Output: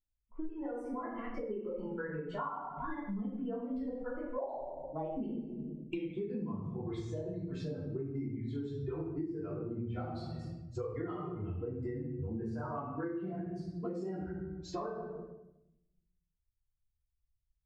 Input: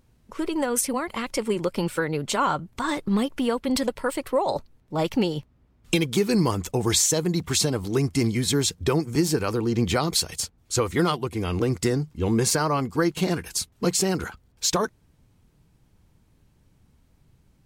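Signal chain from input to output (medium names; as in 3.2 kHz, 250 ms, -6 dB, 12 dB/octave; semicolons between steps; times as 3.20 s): expander on every frequency bin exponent 2; low-pass 1.2 kHz 12 dB/octave; hum notches 60/120 Hz; simulated room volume 270 m³, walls mixed, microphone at 3.1 m; compression 8:1, threshold -32 dBFS, peak gain reduction 21.5 dB; trim -4 dB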